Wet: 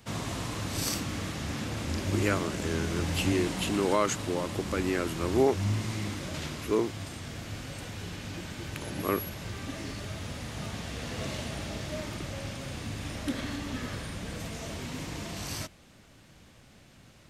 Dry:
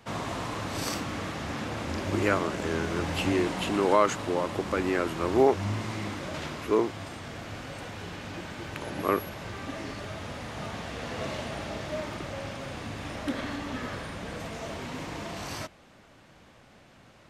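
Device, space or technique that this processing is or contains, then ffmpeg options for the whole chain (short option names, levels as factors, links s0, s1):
smiley-face EQ: -af "lowshelf=f=160:g=4.5,equalizer=f=870:t=o:w=2.4:g=-6,highshelf=f=5600:g=7.5"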